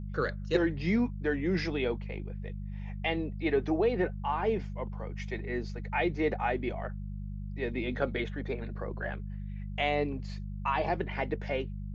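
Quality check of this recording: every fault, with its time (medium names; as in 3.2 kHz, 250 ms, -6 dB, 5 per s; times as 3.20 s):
hum 50 Hz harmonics 4 -38 dBFS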